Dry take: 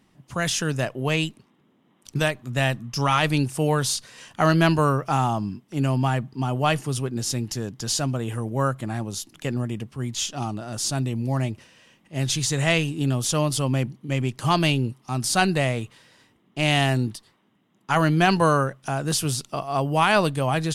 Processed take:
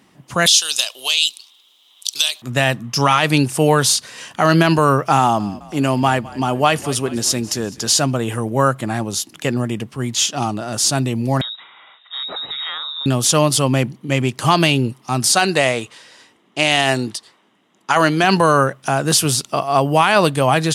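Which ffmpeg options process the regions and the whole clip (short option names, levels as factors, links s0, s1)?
-filter_complex "[0:a]asettb=1/sr,asplit=3[s0][s1][s2];[s0]atrim=end=0.464[s3];[s1]atrim=start=0.46:end=2.42,asetpts=PTS-STARTPTS,afade=t=in:d=0.004:c=qsin,afade=t=out:st=1.956:d=0.004:c=qsin,highpass=1200,acompressor=threshold=0.0251:ratio=6:attack=3.2:release=140:knee=1:detection=peak,highshelf=f=2600:t=q:w=3:g=12.5[s4];[s2]atrim=start=2.416[s5];[s3][s4]acrossfade=d=0.004:c1=hsin:c2=qsin[s6];[s6][s5]acrossfade=d=0.004:c1=qsin:c2=hsin,asettb=1/sr,asplit=3[s7][s8][s9];[s7]atrim=end=5.194[s10];[s8]atrim=start=5.19:end=7.9,asetpts=PTS-STARTPTS,afade=t=in:d=0.004:c=qsin,afade=t=out:st=2.706:d=0.004:c=qsin,equalizer=f=130:w=2.1:g=-4.5,asplit=5[s11][s12][s13][s14][s15];[s12]adelay=208,afreqshift=-36,volume=0.1[s16];[s13]adelay=416,afreqshift=-72,volume=0.0519[s17];[s14]adelay=624,afreqshift=-108,volume=0.0269[s18];[s15]adelay=832,afreqshift=-144,volume=0.0141[s19];[s11][s16][s17][s18][s19]amix=inputs=5:normalize=0,atrim=end_sample=119511[s20];[s9]atrim=start=7.896[s21];[s10][s20]acrossfade=d=0.004:c1=hsin:c2=qsin[s22];[s22][s21]acrossfade=d=0.004:c1=qsin:c2=hsin,asettb=1/sr,asplit=3[s23][s24][s25];[s23]atrim=end=11.414[s26];[s24]atrim=start=11.41:end=13.06,asetpts=PTS-STARTPTS,afade=t=in:d=0.004:c=qsin,afade=t=out:st=1.646:d=0.004:c=qsin,lowpass=f=3300:t=q:w=0.5098,lowpass=f=3300:t=q:w=0.6013,lowpass=f=3300:t=q:w=0.9,lowpass=f=3300:t=q:w=2.563,afreqshift=-3900,acompressor=threshold=0.0178:ratio=5:attack=3.2:release=140:knee=1:detection=peak[s27];[s25]atrim=start=13.056[s28];[s26][s27]acrossfade=d=0.004:c1=hsin:c2=qsin[s29];[s29][s28]acrossfade=d=0.004:c1=qsin:c2=hsin,asettb=1/sr,asplit=3[s30][s31][s32];[s30]atrim=end=15.324[s33];[s31]atrim=start=15.32:end=18.24,asetpts=PTS-STARTPTS,afade=t=in:d=0.004:c=qsin,afade=t=out:st=2.916:d=0.004:c=qsin,lowpass=9200,bass=f=250:g=-8,treble=f=4000:g=4,asoftclip=type=hard:threshold=0.473[s34];[s32]atrim=start=18.236[s35];[s33][s34]acrossfade=d=0.004:c1=hsin:c2=qsin[s36];[s36][s35]acrossfade=d=0.004:c1=qsin:c2=hsin,highpass=52,lowshelf=f=160:g=-9,alimiter=level_in=3.55:limit=0.891:release=50:level=0:latency=1,volume=0.891"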